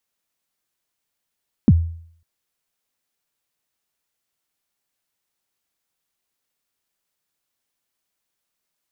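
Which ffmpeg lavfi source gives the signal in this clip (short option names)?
-f lavfi -i "aevalsrc='0.531*pow(10,-3*t/0.59)*sin(2*PI*(280*0.042/log(83/280)*(exp(log(83/280)*min(t,0.042)/0.042)-1)+83*max(t-0.042,0)))':d=0.55:s=44100"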